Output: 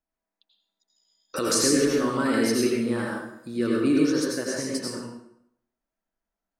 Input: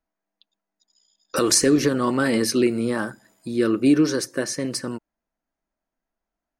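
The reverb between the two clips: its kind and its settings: plate-style reverb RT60 0.73 s, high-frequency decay 0.8×, pre-delay 75 ms, DRR -2.5 dB; trim -7 dB

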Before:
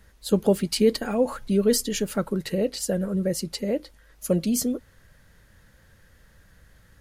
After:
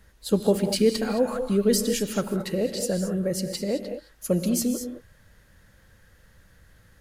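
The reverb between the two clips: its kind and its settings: gated-style reverb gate 240 ms rising, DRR 7 dB; trim -1 dB

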